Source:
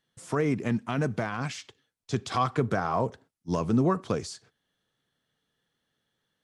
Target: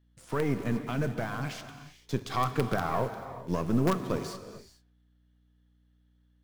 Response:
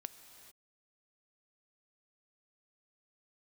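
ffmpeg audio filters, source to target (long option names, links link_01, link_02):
-filter_complex "[0:a]aeval=exprs='if(lt(val(0),0),0.708*val(0),val(0))':channel_layout=same,equalizer=frequency=7600:width=1.3:gain=-5,bandreject=frequency=50:width_type=h:width=6,bandreject=frequency=100:width_type=h:width=6,asplit=2[link_01][link_02];[link_02]acrusher=bits=4:dc=4:mix=0:aa=0.000001,volume=-4dB[link_03];[link_01][link_03]amix=inputs=2:normalize=0,aeval=exprs='val(0)+0.000891*(sin(2*PI*60*n/s)+sin(2*PI*2*60*n/s)/2+sin(2*PI*3*60*n/s)/3+sin(2*PI*4*60*n/s)/4+sin(2*PI*5*60*n/s)/5)':channel_layout=same[link_04];[1:a]atrim=start_sample=2205[link_05];[link_04][link_05]afir=irnorm=-1:irlink=0"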